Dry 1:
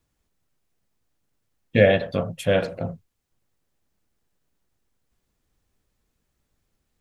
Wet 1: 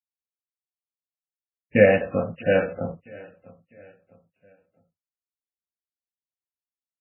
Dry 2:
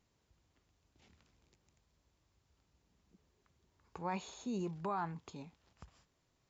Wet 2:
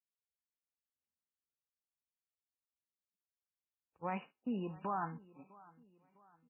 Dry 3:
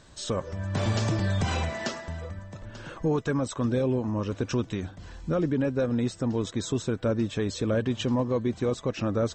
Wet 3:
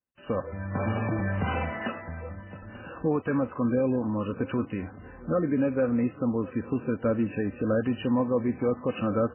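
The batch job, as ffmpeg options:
ffmpeg -i in.wav -af "agate=range=-39dB:threshold=-45dB:ratio=16:detection=peak,highpass=69,aecho=1:1:3.9:0.36,adynamicequalizer=threshold=0.00316:dfrequency=1300:dqfactor=7.2:tfrequency=1300:tqfactor=7.2:attack=5:release=100:ratio=0.375:range=2:mode=boostabove:tftype=bell,aecho=1:1:653|1306|1959:0.0794|0.0342|0.0147" -ar 8000 -c:a libmp3lame -b:a 8k out.mp3

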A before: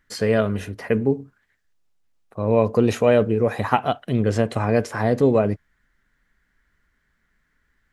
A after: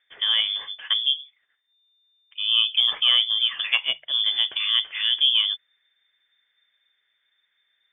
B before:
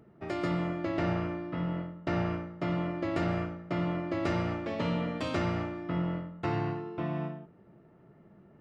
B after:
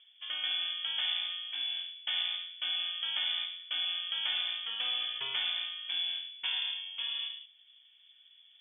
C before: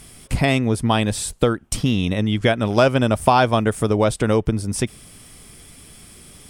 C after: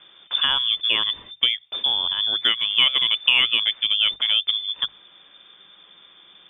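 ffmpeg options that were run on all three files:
ffmpeg -i in.wav -af "lowpass=frequency=3100:width_type=q:width=0.5098,lowpass=frequency=3100:width_type=q:width=0.6013,lowpass=frequency=3100:width_type=q:width=0.9,lowpass=frequency=3100:width_type=q:width=2.563,afreqshift=-3600,bandreject=frequency=50:width_type=h:width=6,bandreject=frequency=100:width_type=h:width=6,bandreject=frequency=150:width_type=h:width=6,aeval=exprs='1.26*(cos(1*acos(clip(val(0)/1.26,-1,1)))-cos(1*PI/2))+0.01*(cos(5*acos(clip(val(0)/1.26,-1,1)))-cos(5*PI/2))+0.0126*(cos(7*acos(clip(val(0)/1.26,-1,1)))-cos(7*PI/2))':channel_layout=same,volume=-3dB" out.wav

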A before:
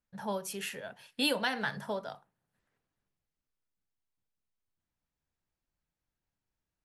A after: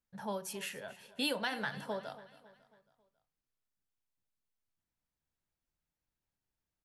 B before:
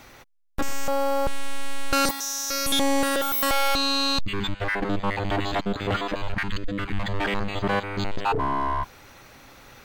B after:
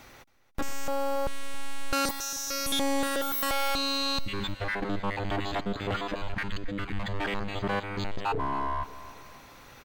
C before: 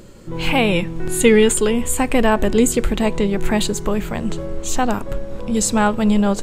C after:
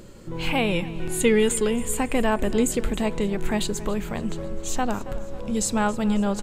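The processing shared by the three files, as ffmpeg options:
ffmpeg -i in.wav -filter_complex "[0:a]aecho=1:1:274|548|822|1096:0.126|0.0604|0.029|0.0139,asplit=2[link_01][link_02];[link_02]acompressor=threshold=-30dB:ratio=6,volume=-3dB[link_03];[link_01][link_03]amix=inputs=2:normalize=0,volume=-7.5dB" out.wav

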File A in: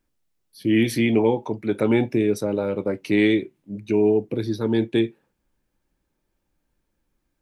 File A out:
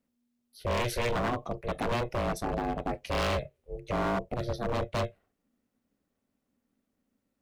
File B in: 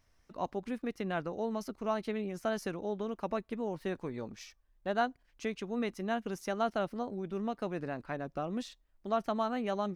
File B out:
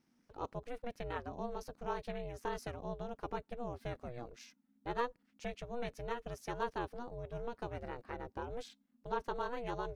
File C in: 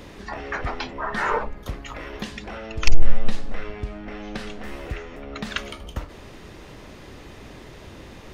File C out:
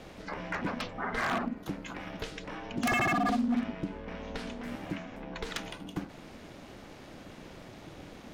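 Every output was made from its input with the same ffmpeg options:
ffmpeg -i in.wav -af "aeval=exprs='val(0)*sin(2*PI*240*n/s)':channel_layout=same,aeval=exprs='0.106*(abs(mod(val(0)/0.106+3,4)-2)-1)':channel_layout=same,volume=-3dB" out.wav

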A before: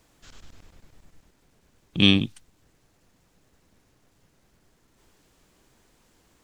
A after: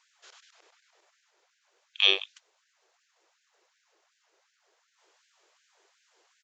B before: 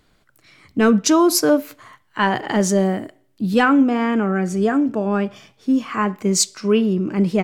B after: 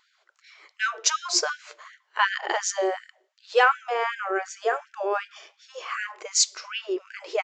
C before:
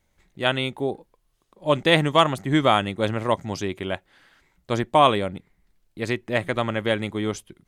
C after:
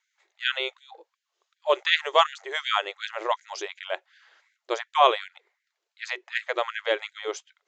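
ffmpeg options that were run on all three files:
ffmpeg -i in.wav -af "aresample=16000,aresample=44100,afftfilt=real='re*gte(b*sr/1024,320*pow(1500/320,0.5+0.5*sin(2*PI*2.7*pts/sr)))':imag='im*gte(b*sr/1024,320*pow(1500/320,0.5+0.5*sin(2*PI*2.7*pts/sr)))':win_size=1024:overlap=0.75,volume=-1dB" out.wav

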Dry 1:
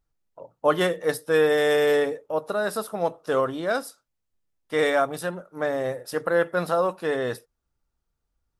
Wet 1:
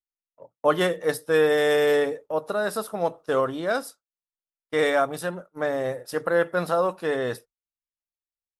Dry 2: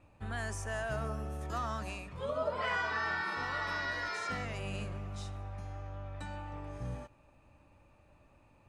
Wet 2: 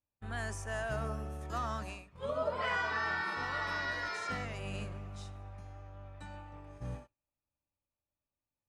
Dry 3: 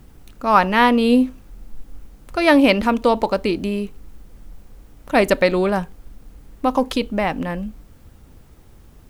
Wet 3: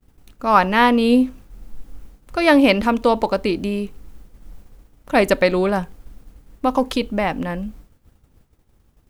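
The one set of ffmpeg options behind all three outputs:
ffmpeg -i in.wav -af "agate=range=-33dB:threshold=-36dB:ratio=3:detection=peak" out.wav

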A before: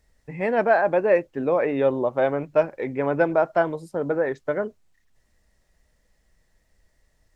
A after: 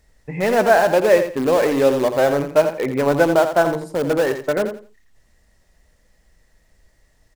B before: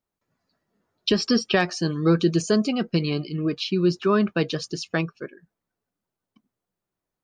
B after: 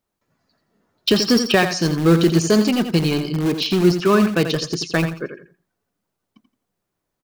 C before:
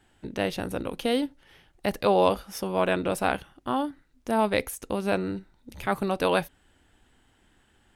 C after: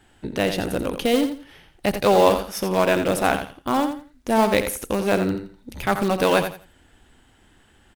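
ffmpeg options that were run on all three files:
ffmpeg -i in.wav -filter_complex "[0:a]asplit=2[link_01][link_02];[link_02]aeval=exprs='(mod(10.6*val(0)+1,2)-1)/10.6':channel_layout=same,volume=-11.5dB[link_03];[link_01][link_03]amix=inputs=2:normalize=0,aecho=1:1:85|170|255:0.355|0.0816|0.0188,volume=4.5dB" out.wav

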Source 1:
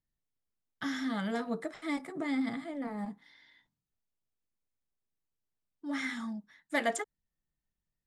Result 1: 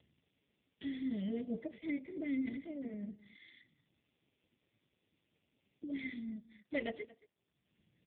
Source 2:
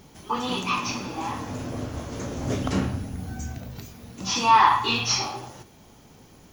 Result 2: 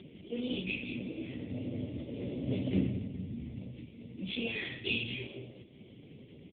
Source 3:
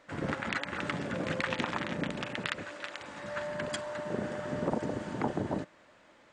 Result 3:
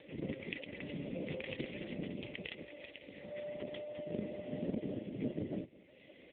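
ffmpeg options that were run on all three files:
ffmpeg -i in.wav -af "acompressor=mode=upward:threshold=-36dB:ratio=2.5,asuperstop=centerf=1100:order=12:qfactor=0.86,aecho=1:1:223:0.0944,volume=-3dB" -ar 8000 -c:a libopencore_amrnb -b:a 5150 out.amr

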